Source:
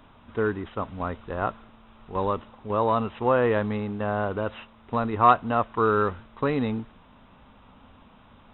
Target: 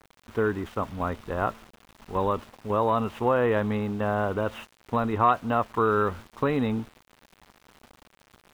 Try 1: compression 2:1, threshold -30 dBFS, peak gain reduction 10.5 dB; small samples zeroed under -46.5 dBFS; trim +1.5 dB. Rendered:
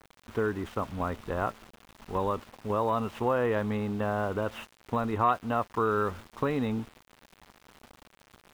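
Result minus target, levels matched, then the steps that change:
compression: peak gain reduction +4 dB
change: compression 2:1, threshold -22 dBFS, peak gain reduction 6.5 dB

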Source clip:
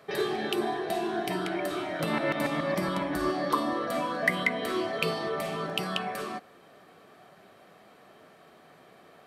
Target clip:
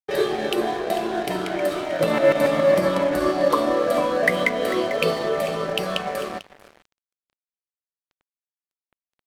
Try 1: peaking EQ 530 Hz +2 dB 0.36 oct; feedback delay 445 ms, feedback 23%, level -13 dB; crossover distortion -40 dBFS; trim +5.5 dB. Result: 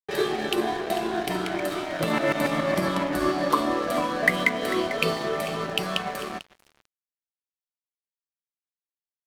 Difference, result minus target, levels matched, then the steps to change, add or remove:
500 Hz band -3.0 dB
change: peaking EQ 530 Hz +13.5 dB 0.36 oct

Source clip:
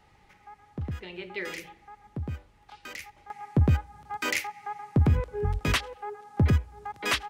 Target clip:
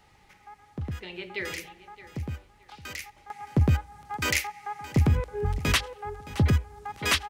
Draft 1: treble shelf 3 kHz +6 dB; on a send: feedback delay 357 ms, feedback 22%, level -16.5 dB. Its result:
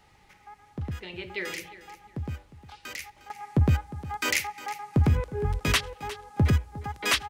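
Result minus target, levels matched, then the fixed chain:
echo 262 ms early
treble shelf 3 kHz +6 dB; on a send: feedback delay 619 ms, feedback 22%, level -16.5 dB

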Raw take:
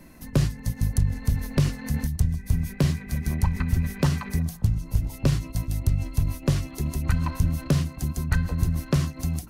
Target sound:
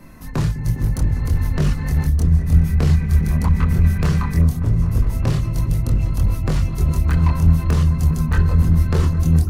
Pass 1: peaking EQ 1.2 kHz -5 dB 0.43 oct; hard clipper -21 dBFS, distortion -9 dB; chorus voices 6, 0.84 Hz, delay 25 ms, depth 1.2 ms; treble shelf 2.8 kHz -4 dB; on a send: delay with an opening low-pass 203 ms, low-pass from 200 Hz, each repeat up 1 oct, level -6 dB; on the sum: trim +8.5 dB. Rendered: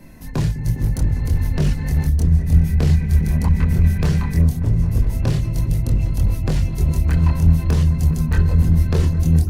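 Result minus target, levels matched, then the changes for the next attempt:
1 kHz band -4.0 dB
change: peaking EQ 1.2 kHz +6.5 dB 0.43 oct

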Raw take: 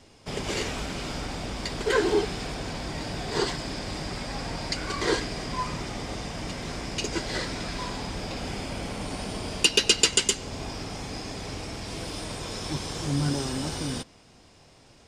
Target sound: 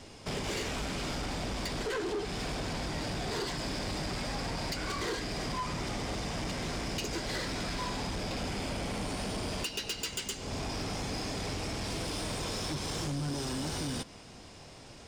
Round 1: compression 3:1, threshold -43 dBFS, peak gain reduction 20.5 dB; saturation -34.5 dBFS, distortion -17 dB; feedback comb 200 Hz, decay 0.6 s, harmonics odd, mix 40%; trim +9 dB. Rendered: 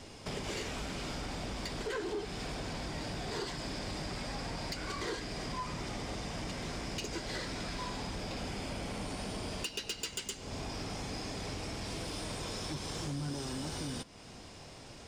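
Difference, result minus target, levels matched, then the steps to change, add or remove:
compression: peak gain reduction +5.5 dB
change: compression 3:1, threshold -34.5 dBFS, peak gain reduction 15 dB

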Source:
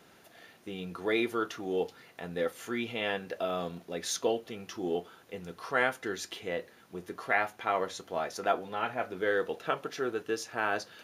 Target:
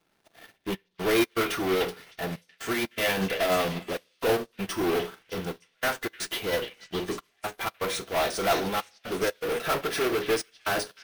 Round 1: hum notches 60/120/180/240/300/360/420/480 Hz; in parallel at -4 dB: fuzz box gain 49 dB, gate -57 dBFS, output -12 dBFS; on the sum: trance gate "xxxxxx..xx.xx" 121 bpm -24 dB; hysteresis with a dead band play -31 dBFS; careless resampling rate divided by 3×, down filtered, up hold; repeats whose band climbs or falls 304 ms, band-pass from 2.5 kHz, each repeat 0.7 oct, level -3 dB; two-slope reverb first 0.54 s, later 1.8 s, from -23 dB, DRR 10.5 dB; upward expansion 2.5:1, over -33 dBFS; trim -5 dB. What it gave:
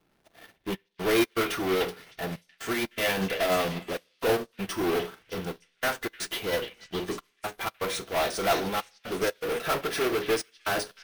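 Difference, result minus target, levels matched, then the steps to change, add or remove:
hysteresis with a dead band: distortion +8 dB
change: hysteresis with a dead band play -40.5 dBFS

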